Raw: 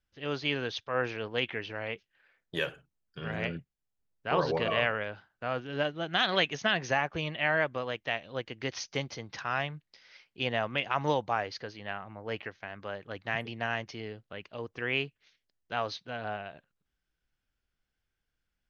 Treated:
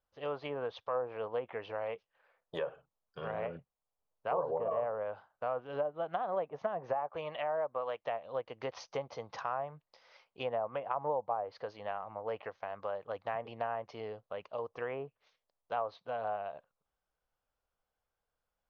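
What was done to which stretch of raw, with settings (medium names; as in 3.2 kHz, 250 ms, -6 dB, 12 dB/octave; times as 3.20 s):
6.93–8.03 s: tilt EQ +2 dB/octave
whole clip: low-pass that closes with the level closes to 900 Hz, closed at -25.5 dBFS; high-order bell 750 Hz +14 dB; compression 2:1, threshold -29 dBFS; trim -7.5 dB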